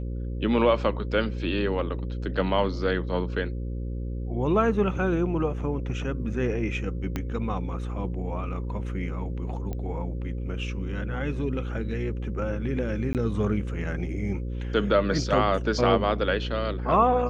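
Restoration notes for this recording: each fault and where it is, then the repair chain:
buzz 60 Hz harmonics 9 -31 dBFS
7.16 pop -15 dBFS
9.73 pop -21 dBFS
13.13–13.15 gap 18 ms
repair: de-click; de-hum 60 Hz, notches 9; interpolate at 13.13, 18 ms

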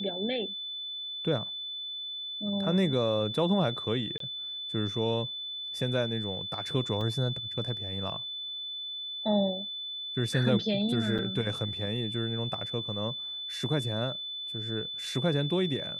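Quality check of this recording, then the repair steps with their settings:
tone 3500 Hz -35 dBFS
4.18–4.2 gap 23 ms
7.01 gap 3 ms
11.18–11.19 gap 7 ms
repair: notch 3500 Hz, Q 30; interpolate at 4.18, 23 ms; interpolate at 7.01, 3 ms; interpolate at 11.18, 7 ms

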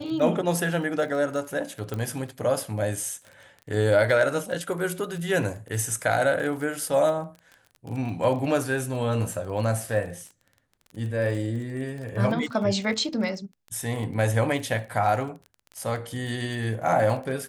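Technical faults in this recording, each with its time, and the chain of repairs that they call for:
crackle 25/s -33 dBFS
1.94 pop -18 dBFS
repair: de-click

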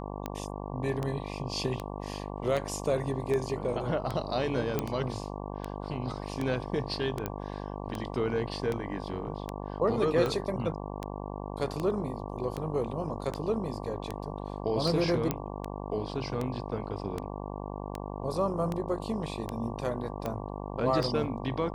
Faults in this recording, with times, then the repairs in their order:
buzz 50 Hz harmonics 23 -38 dBFS
tick 78 rpm -19 dBFS
4.79 pop -14 dBFS
7.26 pop -17 dBFS
15.31 pop -13 dBFS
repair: de-click; de-hum 50 Hz, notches 23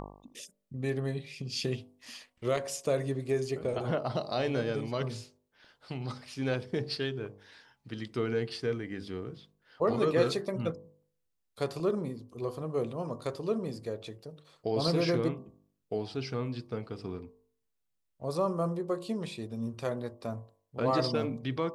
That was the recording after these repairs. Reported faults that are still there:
none

